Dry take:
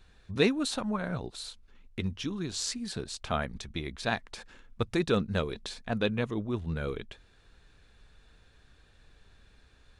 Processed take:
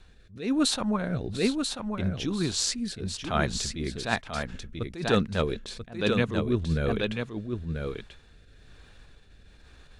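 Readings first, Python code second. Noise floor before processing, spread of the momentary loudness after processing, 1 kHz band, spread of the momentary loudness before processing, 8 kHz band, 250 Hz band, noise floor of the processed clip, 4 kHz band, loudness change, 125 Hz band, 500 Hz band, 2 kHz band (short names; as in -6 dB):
-61 dBFS, 10 LU, +4.0 dB, 13 LU, +7.0 dB, +5.0 dB, -55 dBFS, +5.0 dB, +3.5 dB, +5.0 dB, +3.0 dB, +3.5 dB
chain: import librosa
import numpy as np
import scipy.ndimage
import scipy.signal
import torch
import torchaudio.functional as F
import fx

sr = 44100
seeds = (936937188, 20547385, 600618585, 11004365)

y = fx.rotary(x, sr, hz=1.1)
y = y + 10.0 ** (-5.5 / 20.0) * np.pad(y, (int(988 * sr / 1000.0), 0))[:len(y)]
y = fx.attack_slew(y, sr, db_per_s=140.0)
y = F.gain(torch.from_numpy(y), 7.5).numpy()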